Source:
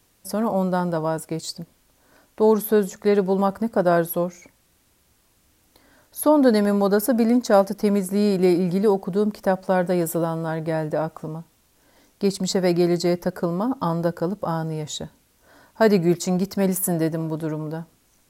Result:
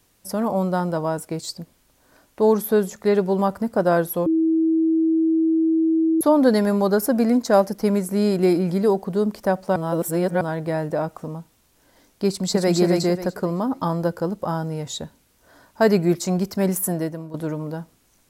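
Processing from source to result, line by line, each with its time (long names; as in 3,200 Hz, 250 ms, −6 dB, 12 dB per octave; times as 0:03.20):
0:04.26–0:06.21: beep over 323 Hz −15.5 dBFS
0:09.76–0:10.41: reverse
0:12.27–0:12.76: delay throw 270 ms, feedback 30%, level −3 dB
0:16.81–0:17.34: fade out linear, to −12.5 dB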